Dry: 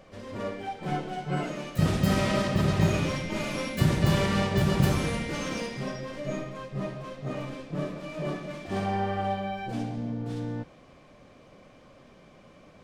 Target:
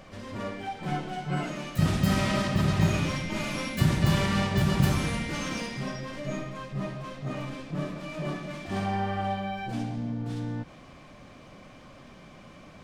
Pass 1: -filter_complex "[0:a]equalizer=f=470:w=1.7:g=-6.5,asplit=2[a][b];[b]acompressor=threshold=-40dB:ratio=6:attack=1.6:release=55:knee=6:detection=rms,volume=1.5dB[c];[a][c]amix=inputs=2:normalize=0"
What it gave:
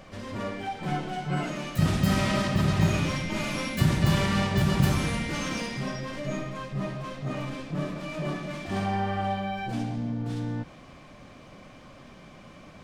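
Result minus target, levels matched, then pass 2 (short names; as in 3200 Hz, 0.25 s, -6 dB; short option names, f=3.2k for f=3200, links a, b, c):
compressor: peak gain reduction -7.5 dB
-filter_complex "[0:a]equalizer=f=470:w=1.7:g=-6.5,asplit=2[a][b];[b]acompressor=threshold=-49dB:ratio=6:attack=1.6:release=55:knee=6:detection=rms,volume=1.5dB[c];[a][c]amix=inputs=2:normalize=0"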